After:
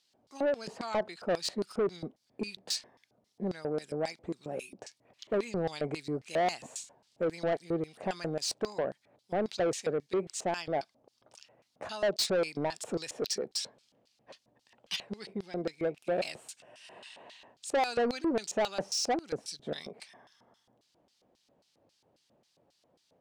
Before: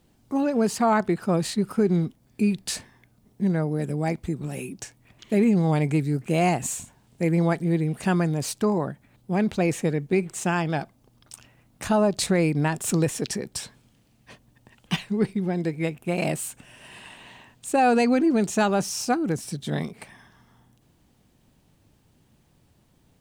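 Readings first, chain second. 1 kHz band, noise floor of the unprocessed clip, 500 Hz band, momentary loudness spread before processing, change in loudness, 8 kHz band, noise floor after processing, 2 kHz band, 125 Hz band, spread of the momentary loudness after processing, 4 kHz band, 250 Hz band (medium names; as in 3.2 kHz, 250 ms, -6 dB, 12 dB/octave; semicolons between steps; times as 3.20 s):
-9.0 dB, -62 dBFS, -5.5 dB, 13 LU, -9.0 dB, -7.5 dB, -74 dBFS, -9.0 dB, -18.5 dB, 17 LU, -1.0 dB, -14.5 dB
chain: LFO band-pass square 3.7 Hz 580–4700 Hz; saturation -29 dBFS, distortion -9 dB; trim +5 dB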